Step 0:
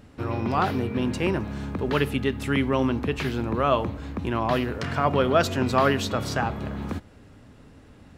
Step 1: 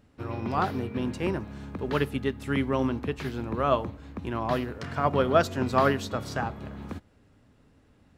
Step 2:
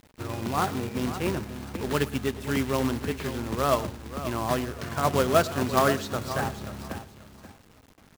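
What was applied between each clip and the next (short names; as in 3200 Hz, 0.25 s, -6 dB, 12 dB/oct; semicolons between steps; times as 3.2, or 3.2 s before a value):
dynamic EQ 2700 Hz, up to -4 dB, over -40 dBFS, Q 1.9; upward expander 1.5:1, over -37 dBFS
feedback echo 0.535 s, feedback 20%, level -12 dB; companded quantiser 4-bit; echo 0.114 s -18 dB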